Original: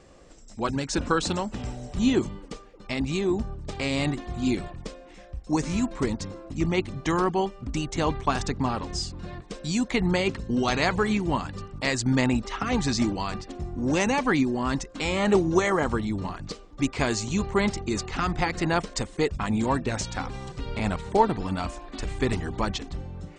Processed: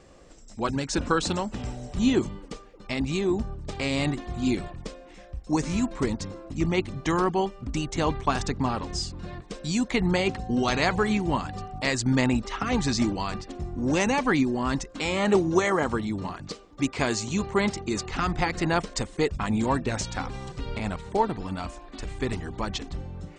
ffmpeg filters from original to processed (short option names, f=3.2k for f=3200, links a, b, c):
-filter_complex "[0:a]asettb=1/sr,asplit=3[a][b][c];[a]atrim=end=10.154[d];[b]atrim=start=10.15:end=11.82,asetpts=PTS-STARTPTS,afade=t=in:d=0.004:c=qsin,afade=t=out:st=1.666:d=0.004:c=qsin,aeval=exprs='val(0)+0.0112*sin(2*PI*750*n/s)':c=same[e];[c]atrim=start=11.816[f];[d][e]acrossfade=d=0.004:c1=hsin:c2=qsin[g];[g][f]acrossfade=d=0.004:c1=qsin:c2=hsin,asettb=1/sr,asplit=3[h][i][j];[h]atrim=end=14.994[k];[i]atrim=start=14.99:end=18.06,asetpts=PTS-STARTPTS,afade=t=in:d=0.004:c=qsin,afade=t=out:st=3.066:d=0.004:c=qsin,highpass=f=96:p=1[l];[j]atrim=start=18.056[m];[k][l]acrossfade=d=0.004:c1=hsin:c2=qsin[n];[n][m]acrossfade=d=0.004:c1=qsin:c2=hsin,asplit=3[o][p][q];[o]atrim=end=20.782[r];[p]atrim=start=20.778:end=22.722,asetpts=PTS-STARTPTS,volume=-3.5dB[s];[q]atrim=start=22.718[t];[r][s]acrossfade=d=0.004:c1=hsin:c2=hsin[u];[u][t]acrossfade=d=0.004:c1=hsin:c2=hsin"